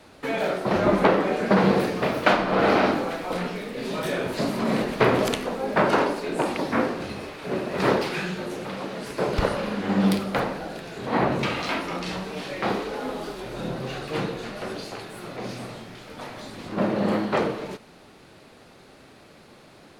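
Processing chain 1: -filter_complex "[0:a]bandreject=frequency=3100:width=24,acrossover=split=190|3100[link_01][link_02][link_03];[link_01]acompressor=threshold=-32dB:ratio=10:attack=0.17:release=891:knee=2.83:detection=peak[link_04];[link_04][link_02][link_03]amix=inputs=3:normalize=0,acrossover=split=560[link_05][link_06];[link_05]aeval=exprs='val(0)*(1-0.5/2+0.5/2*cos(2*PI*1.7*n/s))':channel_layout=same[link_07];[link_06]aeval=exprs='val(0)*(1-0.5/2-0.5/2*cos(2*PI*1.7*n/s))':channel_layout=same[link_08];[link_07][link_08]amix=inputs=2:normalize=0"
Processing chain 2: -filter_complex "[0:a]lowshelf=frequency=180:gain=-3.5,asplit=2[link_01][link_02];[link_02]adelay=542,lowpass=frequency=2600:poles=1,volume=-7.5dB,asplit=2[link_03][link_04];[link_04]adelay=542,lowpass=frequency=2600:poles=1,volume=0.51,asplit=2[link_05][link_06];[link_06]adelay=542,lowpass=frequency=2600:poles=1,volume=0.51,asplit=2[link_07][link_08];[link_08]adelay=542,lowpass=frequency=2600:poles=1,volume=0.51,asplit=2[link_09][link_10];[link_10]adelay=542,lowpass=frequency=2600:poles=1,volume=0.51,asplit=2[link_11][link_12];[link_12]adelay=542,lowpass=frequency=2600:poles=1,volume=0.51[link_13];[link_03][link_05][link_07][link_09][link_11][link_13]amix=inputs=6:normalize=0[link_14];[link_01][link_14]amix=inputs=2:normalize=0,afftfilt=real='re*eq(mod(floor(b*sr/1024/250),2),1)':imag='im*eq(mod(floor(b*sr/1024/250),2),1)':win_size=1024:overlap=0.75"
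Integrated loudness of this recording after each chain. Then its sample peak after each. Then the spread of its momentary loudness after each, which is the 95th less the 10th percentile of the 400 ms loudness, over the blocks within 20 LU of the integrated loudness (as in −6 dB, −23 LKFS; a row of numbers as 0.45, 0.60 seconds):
−28.0, −28.5 LKFS; −6.5, −7.0 dBFS; 14, 16 LU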